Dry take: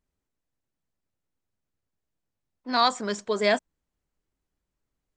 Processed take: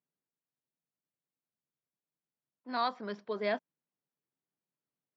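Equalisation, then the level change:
elliptic band-pass filter 140–5,100 Hz
high-frequency loss of the air 200 metres
−8.5 dB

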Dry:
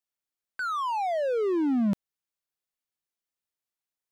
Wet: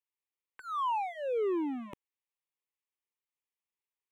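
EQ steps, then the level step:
low-shelf EQ 350 Hz −8.5 dB
high-shelf EQ 6,400 Hz −10.5 dB
phaser with its sweep stopped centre 980 Hz, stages 8
0.0 dB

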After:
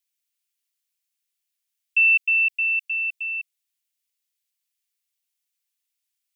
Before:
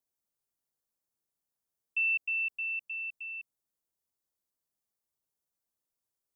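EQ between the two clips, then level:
high-pass with resonance 2,500 Hz, resonance Q 1.8
+6.5 dB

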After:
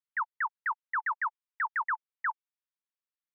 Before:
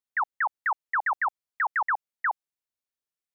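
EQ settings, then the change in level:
linear-phase brick-wall high-pass 870 Hz
high-frequency loss of the air 210 metres
−3.0 dB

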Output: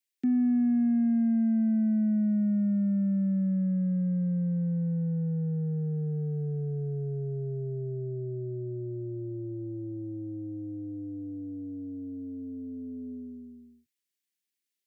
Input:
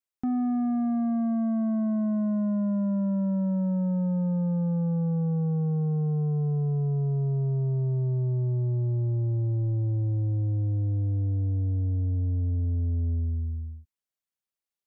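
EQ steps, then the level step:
Bessel high-pass filter 270 Hz, order 8
Butterworth band-reject 1,000 Hz, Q 1.4
flat-topped bell 820 Hz −14.5 dB
+5.5 dB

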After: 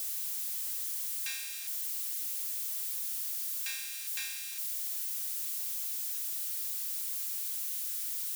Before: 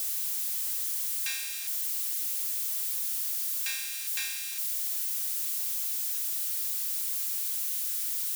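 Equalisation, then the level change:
low-shelf EQ 240 Hz −9.5 dB
−4.5 dB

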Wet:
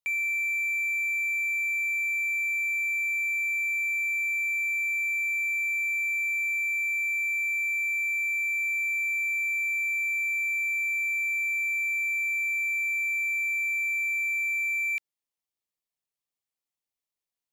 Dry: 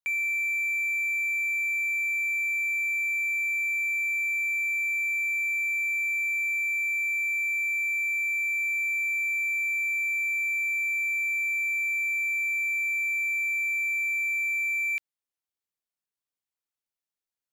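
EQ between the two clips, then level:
parametric band 1,500 Hz −11 dB 0.21 octaves
0.0 dB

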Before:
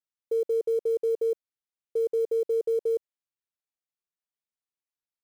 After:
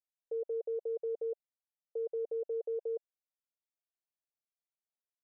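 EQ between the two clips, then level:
resonant band-pass 660 Hz, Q 3.7
high-frequency loss of the air 220 metres
0.0 dB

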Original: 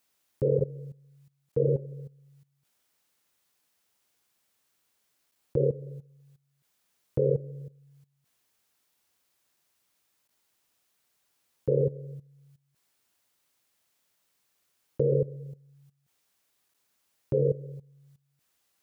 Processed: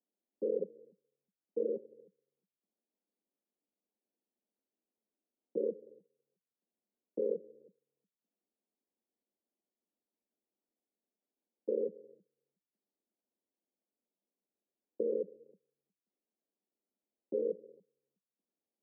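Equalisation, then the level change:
Gaussian smoothing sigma 15 samples
Butterworth high-pass 190 Hz 96 dB per octave
high-frequency loss of the air 150 metres
−3.0 dB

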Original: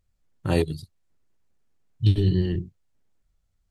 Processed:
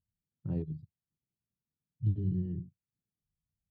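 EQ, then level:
resonant band-pass 150 Hz, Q 1.8
−6.0 dB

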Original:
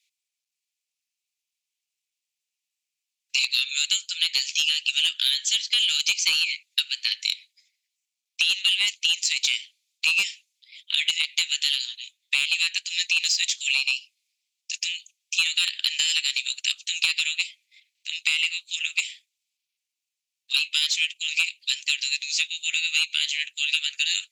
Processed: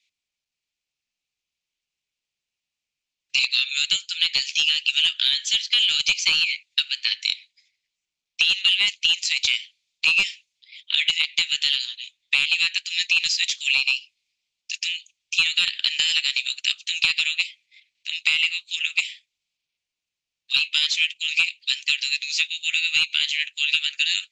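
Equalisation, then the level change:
high-frequency loss of the air 100 metres
low-shelf EQ 220 Hz +10 dB
+4.5 dB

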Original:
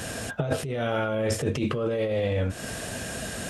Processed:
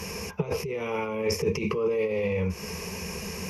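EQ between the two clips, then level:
EQ curve with evenly spaced ripples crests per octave 0.81, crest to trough 18 dB
−3.5 dB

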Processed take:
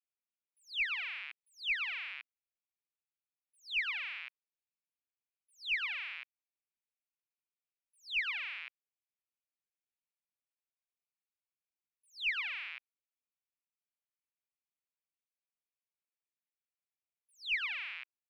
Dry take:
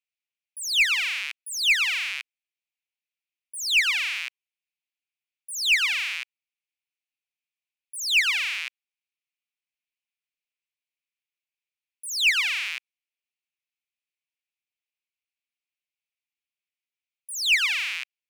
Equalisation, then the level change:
high-frequency loss of the air 440 metres
low-shelf EQ 380 Hz −3.5 dB
−7.0 dB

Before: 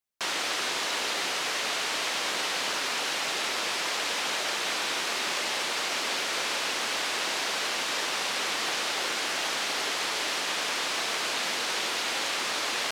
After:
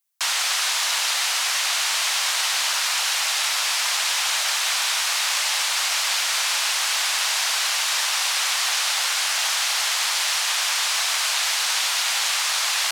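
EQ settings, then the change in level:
high-pass filter 750 Hz 24 dB per octave
high-shelf EQ 5,200 Hz +11 dB
+4.0 dB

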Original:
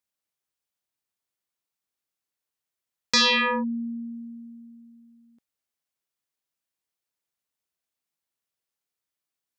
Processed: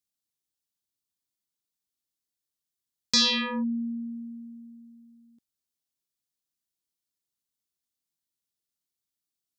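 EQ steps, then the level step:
flat-topped bell 1,100 Hz −9.5 dB 2.9 octaves
0.0 dB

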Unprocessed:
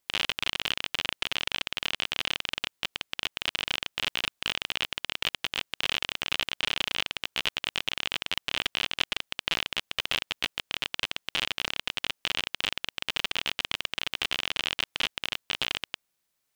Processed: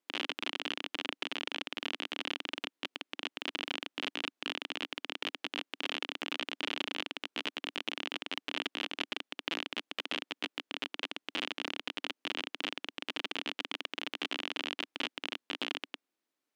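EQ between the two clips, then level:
high-pass with resonance 280 Hz, resonance Q 3.4
low-pass filter 3,100 Hz 6 dB per octave
−5.0 dB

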